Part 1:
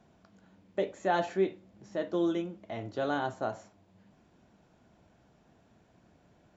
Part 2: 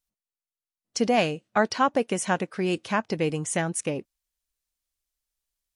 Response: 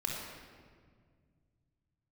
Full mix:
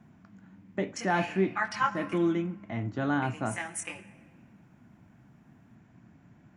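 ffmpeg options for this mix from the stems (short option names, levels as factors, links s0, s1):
-filter_complex "[0:a]volume=0.944,asplit=2[s0][s1];[1:a]highpass=890,aecho=1:1:5.8:0.65,flanger=delay=18.5:depth=5:speed=0.63,volume=0.596,asplit=3[s2][s3][s4];[s2]atrim=end=2.18,asetpts=PTS-STARTPTS,afade=t=out:st=2.176:d=0.004:c=hsin[s5];[s3]atrim=start=2.18:end=3.22,asetpts=PTS-STARTPTS,volume=0[s6];[s4]atrim=start=3.22,asetpts=PTS-STARTPTS,afade=t=in:d=0.004:c=hsin[s7];[s5][s6][s7]concat=n=3:v=0:a=1,asplit=2[s8][s9];[s9]volume=0.2[s10];[s1]apad=whole_len=253834[s11];[s8][s11]sidechaincompress=threshold=0.01:ratio=8:attack=9.1:release=160[s12];[2:a]atrim=start_sample=2205[s13];[s10][s13]afir=irnorm=-1:irlink=0[s14];[s0][s12][s14]amix=inputs=3:normalize=0,equalizer=f=125:t=o:w=1:g=10,equalizer=f=250:t=o:w=1:g=9,equalizer=f=500:t=o:w=1:g=-8,equalizer=f=1000:t=o:w=1:g=3,equalizer=f=2000:t=o:w=1:g=7,equalizer=f=4000:t=o:w=1:g=-7"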